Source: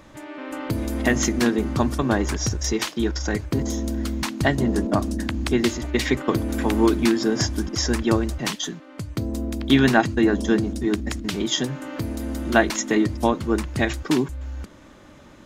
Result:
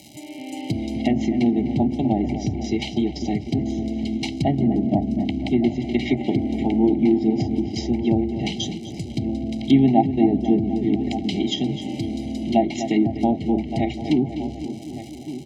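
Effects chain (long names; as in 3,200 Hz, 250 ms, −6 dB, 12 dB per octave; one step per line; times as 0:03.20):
feedback echo with a low-pass in the loop 249 ms, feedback 67%, low-pass 1,800 Hz, level −10 dB
surface crackle 270 per second −33 dBFS
Chebyshev band-stop filter 790–2,200 Hz, order 4
comb filter 1 ms, depth 79%
slap from a distant wall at 200 metres, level −13 dB
treble cut that deepens with the level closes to 1,300 Hz, closed at −15 dBFS
high-pass filter 140 Hz 12 dB per octave
level +1.5 dB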